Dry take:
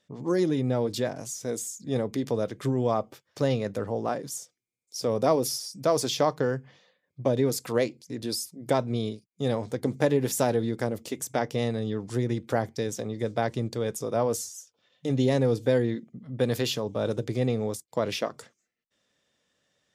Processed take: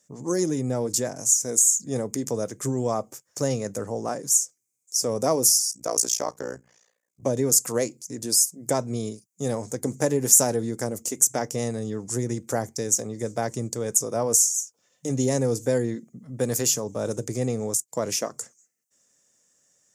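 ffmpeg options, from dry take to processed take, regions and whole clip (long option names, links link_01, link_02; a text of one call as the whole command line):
ffmpeg -i in.wav -filter_complex "[0:a]asettb=1/sr,asplit=3[link_01][link_02][link_03];[link_01]atrim=end=5.714[link_04];[link_02]atrim=start=5.71:end=7.23,asetpts=PTS-STARTPTS,afade=type=in:duration=0.004:curve=qsin,afade=type=out:start_time=1.516:duration=0.004:curve=qsin,highpass=frequency=350:poles=1,tremolo=f=59:d=0.974[link_05];[link_03]atrim=start=7.226[link_06];[link_04][link_05]acrossfade=duration=0.004:curve1=hsin:curve2=qsin[link_07];[link_07][link_06]acrossfade=duration=0.004:curve1=qsin:curve2=hsin,highpass=82,highshelf=frequency=5000:width_type=q:width=3:gain=11.5" out.wav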